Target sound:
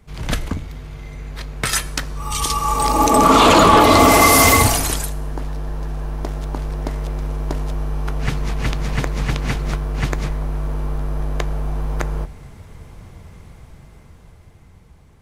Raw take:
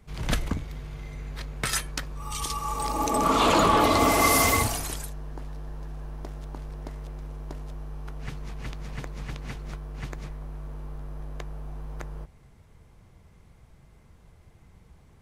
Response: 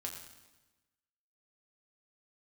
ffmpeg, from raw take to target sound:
-filter_complex "[0:a]dynaudnorm=f=380:g=11:m=11dB,asplit=2[a][b];[1:a]atrim=start_sample=2205[c];[b][c]afir=irnorm=-1:irlink=0,volume=-11dB[d];[a][d]amix=inputs=2:normalize=0,alimiter=level_in=4dB:limit=-1dB:release=50:level=0:latency=1,volume=-1dB"

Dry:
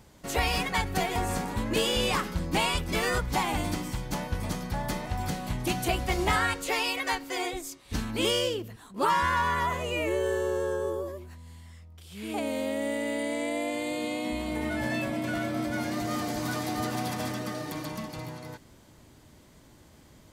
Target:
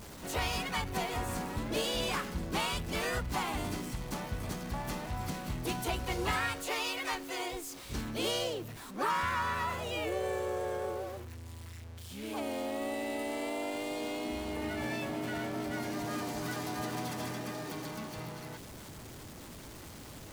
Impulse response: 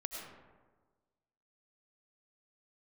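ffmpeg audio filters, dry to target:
-filter_complex "[0:a]aeval=exprs='val(0)+0.5*0.0168*sgn(val(0))':c=same,asplit=3[a][b][c];[b]asetrate=58866,aresample=44100,atempo=0.749154,volume=-6dB[d];[c]asetrate=88200,aresample=44100,atempo=0.5,volume=-16dB[e];[a][d][e]amix=inputs=3:normalize=0,volume=-8.5dB"

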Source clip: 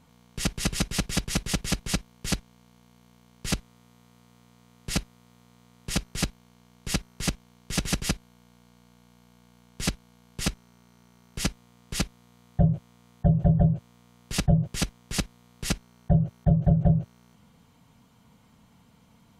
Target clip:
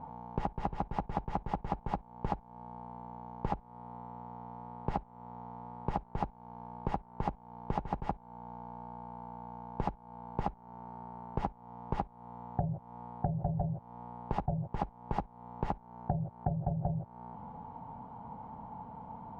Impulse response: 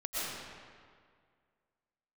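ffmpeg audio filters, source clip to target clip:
-af "alimiter=limit=-18.5dB:level=0:latency=1:release=414,lowpass=f=860:t=q:w=9.8,acompressor=threshold=-38dB:ratio=6,volume=7.5dB"

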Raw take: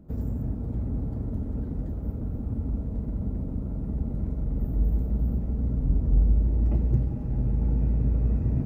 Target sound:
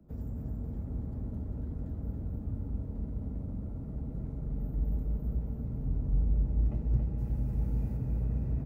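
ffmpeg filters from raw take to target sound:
-filter_complex "[0:a]asettb=1/sr,asplit=3[a][b][c];[a]atrim=end=7.184[d];[b]atrim=start=7.18:end=7.97,asetpts=PTS-STARTPTS,afade=t=in:d=0.004:c=qsin,afade=t=out:st=0.786:d=0.004:c=qsin,aemphasis=mode=production:type=75kf[e];[c]atrim=start=7.966[f];[d][e]acrossfade=d=0.004:c1=hsin:c2=qsin[g];[g][f]acrossfade=d=0.004:c1=qsin:c2=hsin,acrossover=split=110|240|440[h][i][j][k];[j]alimiter=level_in=16.5dB:limit=-24dB:level=0:latency=1,volume=-16.5dB[l];[h][i][l][k]amix=inputs=4:normalize=0,aecho=1:1:277|554|831|1108|1385|1662|1939:0.562|0.304|0.164|0.0885|0.0478|0.0258|0.0139,volume=-8dB"

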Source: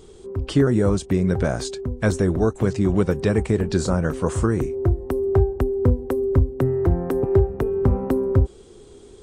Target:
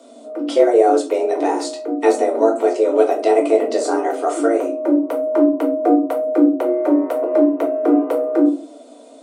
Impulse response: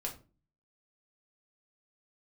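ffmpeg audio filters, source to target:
-filter_complex "[0:a]afreqshift=230,asuperstop=centerf=1700:order=4:qfactor=7.4[a];[1:a]atrim=start_sample=2205[b];[a][b]afir=irnorm=-1:irlink=0,volume=2.5dB"

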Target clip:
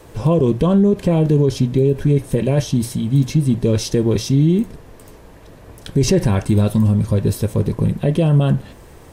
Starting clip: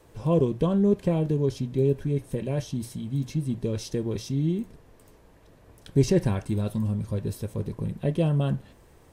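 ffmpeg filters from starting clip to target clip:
-af "alimiter=level_in=18.5dB:limit=-1dB:release=50:level=0:latency=1,volume=-5.5dB"

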